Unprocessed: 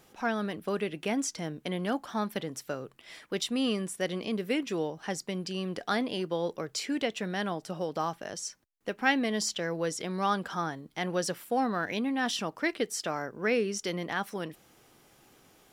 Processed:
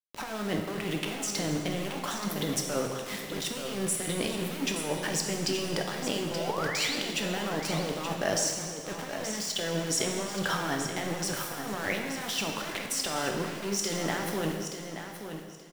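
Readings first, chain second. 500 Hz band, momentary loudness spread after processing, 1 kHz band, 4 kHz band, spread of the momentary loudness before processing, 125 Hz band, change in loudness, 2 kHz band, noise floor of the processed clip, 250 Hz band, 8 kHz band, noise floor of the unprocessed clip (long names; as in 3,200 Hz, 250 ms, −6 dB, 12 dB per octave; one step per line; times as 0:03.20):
−0.5 dB, 7 LU, −1.5 dB, +4.5 dB, 8 LU, +3.5 dB, +1.0 dB, +0.5 dB, −41 dBFS, −1.0 dB, +7.0 dB, −62 dBFS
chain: compressor whose output falls as the input rises −38 dBFS, ratio −1
centre clipping without the shift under −40.5 dBFS
sound drawn into the spectrogram rise, 0:06.35–0:06.96, 480–5,000 Hz −41 dBFS
on a send: repeating echo 877 ms, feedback 20%, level −9 dB
on the sum: dense smooth reverb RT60 1.6 s, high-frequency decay 1×, DRR 2 dB
level +4 dB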